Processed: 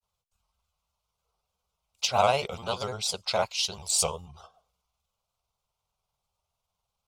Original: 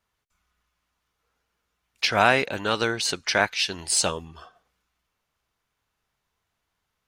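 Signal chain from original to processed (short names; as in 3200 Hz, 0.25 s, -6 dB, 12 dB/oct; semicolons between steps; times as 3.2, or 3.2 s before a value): grains 0.1 s, spray 19 ms, pitch spread up and down by 3 st; fixed phaser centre 730 Hz, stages 4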